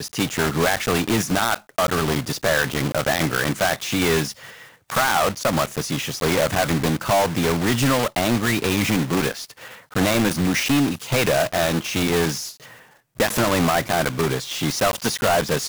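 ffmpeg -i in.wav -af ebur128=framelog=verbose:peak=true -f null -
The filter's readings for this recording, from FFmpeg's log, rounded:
Integrated loudness:
  I:         -21.0 LUFS
  Threshold: -31.3 LUFS
Loudness range:
  LRA:         1.5 LU
  Threshold: -41.3 LUFS
  LRA low:   -22.0 LUFS
  LRA high:  -20.5 LUFS
True peak:
  Peak:      -11.1 dBFS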